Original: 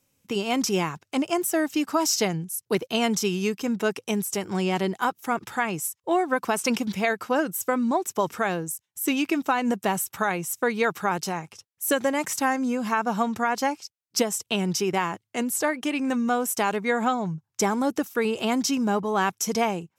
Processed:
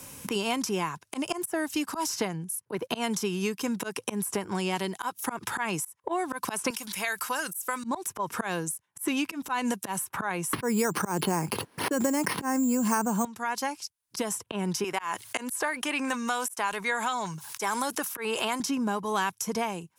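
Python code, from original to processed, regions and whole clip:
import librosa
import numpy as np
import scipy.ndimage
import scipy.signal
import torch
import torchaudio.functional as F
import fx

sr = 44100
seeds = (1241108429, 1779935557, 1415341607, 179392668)

y = fx.chain(x, sr, fx.pre_emphasis(coefficient=0.97),
    fx.env_flatten(amount_pct=50), at=(6.7, 7.84))
y = fx.chain(y, sr, fx.peak_eq(hz=260.0, db=13.5, octaves=2.5),
    fx.resample_bad(factor=6, down='filtered', up='hold'),
    fx.env_flatten(amount_pct=70), at=(10.53, 13.25))
y = fx.chain(y, sr, fx.highpass(hz=1100.0, slope=6),
    fx.env_flatten(amount_pct=50), at=(14.84, 18.6))
y = fx.graphic_eq_31(y, sr, hz=(1000, 1600, 10000), db=(8, 4, 10))
y = fx.auto_swell(y, sr, attack_ms=174.0)
y = fx.band_squash(y, sr, depth_pct=100)
y = y * librosa.db_to_amplitude(-6.5)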